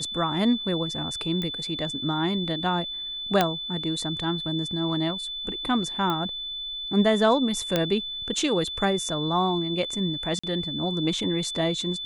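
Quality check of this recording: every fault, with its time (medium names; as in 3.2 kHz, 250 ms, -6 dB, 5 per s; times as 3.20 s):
whine 3.5 kHz -31 dBFS
1.42 s: pop -17 dBFS
3.41 s: pop -6 dBFS
6.10 s: pop -15 dBFS
7.76 s: pop -8 dBFS
10.39–10.44 s: dropout 45 ms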